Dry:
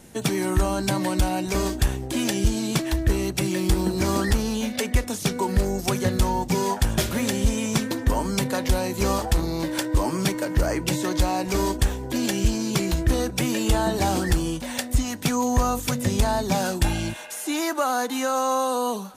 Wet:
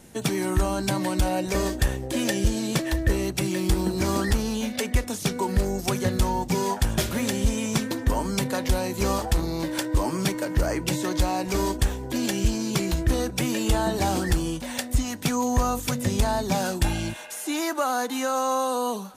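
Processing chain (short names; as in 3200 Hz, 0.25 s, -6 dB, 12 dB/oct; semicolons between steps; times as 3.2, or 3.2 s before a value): 1.25–3.3 small resonant body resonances 530/1800 Hz, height 10 dB; gain -1.5 dB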